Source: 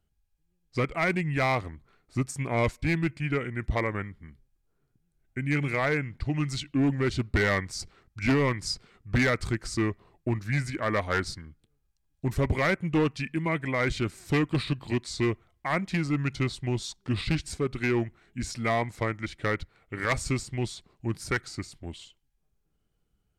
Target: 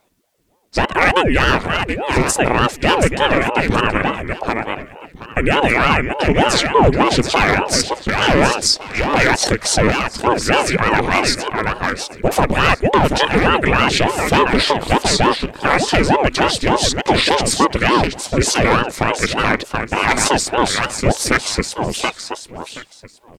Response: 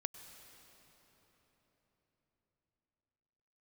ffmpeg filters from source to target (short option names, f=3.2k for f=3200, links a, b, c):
-filter_complex "[0:a]highpass=f=230:p=1,acompressor=threshold=-27dB:ratio=6,asplit=2[a][b];[b]aecho=0:1:726|1452|2178:0.398|0.0796|0.0159[c];[a][c]amix=inputs=2:normalize=0,alimiter=level_in=23dB:limit=-1dB:release=50:level=0:latency=1,aeval=exprs='val(0)*sin(2*PI*420*n/s+420*0.75/3.4*sin(2*PI*3.4*n/s))':c=same"